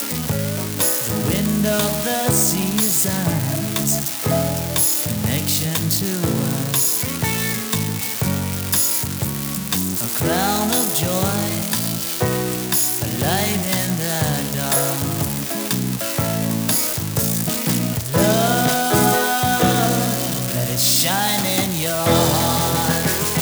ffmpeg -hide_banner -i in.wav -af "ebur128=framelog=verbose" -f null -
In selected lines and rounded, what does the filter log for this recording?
Integrated loudness:
  I:         -18.4 LUFS
  Threshold: -28.4 LUFS
Loudness range:
  LRA:         2.7 LU
  Threshold: -38.4 LUFS
  LRA low:   -19.7 LUFS
  LRA high:  -17.0 LUFS